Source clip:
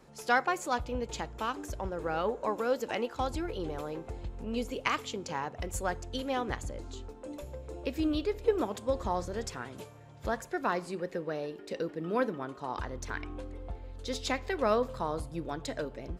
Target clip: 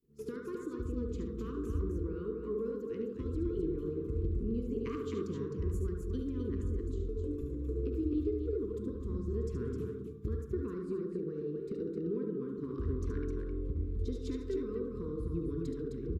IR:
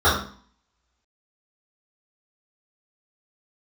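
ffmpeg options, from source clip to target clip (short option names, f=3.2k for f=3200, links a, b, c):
-filter_complex "[0:a]aemphasis=mode=reproduction:type=75kf,agate=range=-33dB:threshold=-44dB:ratio=3:detection=peak,firequalizer=gain_entry='entry(140,0);entry(640,4);entry(1300,-21);entry(12000,-2)':delay=0.05:min_phase=1,acompressor=threshold=-41dB:ratio=6,asuperstop=centerf=700:order=12:qfactor=1.1,aecho=1:1:72.89|259.5:0.447|0.562,asplit=2[a][b];[1:a]atrim=start_sample=2205,adelay=39[c];[b][c]afir=irnorm=-1:irlink=0,volume=-28dB[d];[a][d]amix=inputs=2:normalize=0,volume=8dB" -ar 44100 -c:a nellymoser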